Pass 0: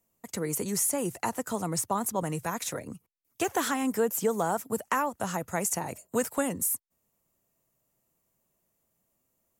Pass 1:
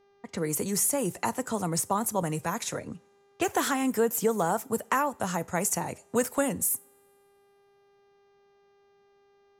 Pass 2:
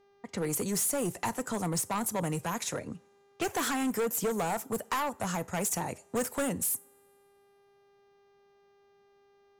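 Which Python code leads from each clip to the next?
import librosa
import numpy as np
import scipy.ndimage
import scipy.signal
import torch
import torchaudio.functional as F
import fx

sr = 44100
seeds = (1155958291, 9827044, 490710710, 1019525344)

y1 = fx.env_lowpass(x, sr, base_hz=2300.0, full_db=-27.0)
y1 = fx.rev_double_slope(y1, sr, seeds[0], early_s=0.33, late_s=1.9, knee_db=-22, drr_db=17.5)
y1 = fx.dmg_buzz(y1, sr, base_hz=400.0, harmonics=16, level_db=-65.0, tilt_db=-8, odd_only=False)
y1 = F.gain(torch.from_numpy(y1), 1.5).numpy()
y2 = np.clip(y1, -10.0 ** (-25.0 / 20.0), 10.0 ** (-25.0 / 20.0))
y2 = F.gain(torch.from_numpy(y2), -1.0).numpy()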